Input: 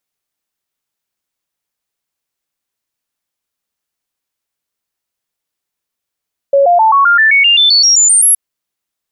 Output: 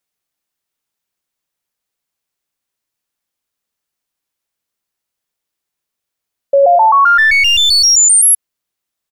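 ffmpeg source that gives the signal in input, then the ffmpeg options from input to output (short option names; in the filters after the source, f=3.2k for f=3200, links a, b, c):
-f lavfi -i "aevalsrc='0.562*clip(min(mod(t,0.13),0.13-mod(t,0.13))/0.005,0,1)*sin(2*PI*556*pow(2,floor(t/0.13)/3)*mod(t,0.13))':d=1.82:s=44100"
-filter_complex "[0:a]acrossover=split=790|2000|4600[a][b][c][d];[a]aecho=1:1:99|198|297:0.251|0.0779|0.0241[e];[c]aeval=exprs='clip(val(0),-1,0.0708)':c=same[f];[e][b][f][d]amix=inputs=4:normalize=0"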